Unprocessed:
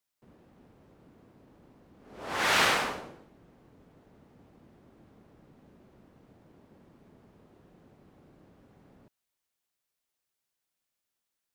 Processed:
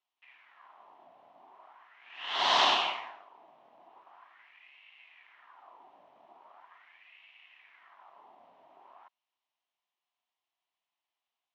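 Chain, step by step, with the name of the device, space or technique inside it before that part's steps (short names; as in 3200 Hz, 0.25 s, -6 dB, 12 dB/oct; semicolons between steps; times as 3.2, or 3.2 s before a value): voice changer toy (ring modulator with a swept carrier 1400 Hz, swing 75%, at 0.41 Hz; speaker cabinet 420–4900 Hz, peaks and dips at 490 Hz -9 dB, 720 Hz +7 dB, 1000 Hz +8 dB, 1500 Hz -6 dB, 3000 Hz +5 dB, 4700 Hz -6 dB); gain +2 dB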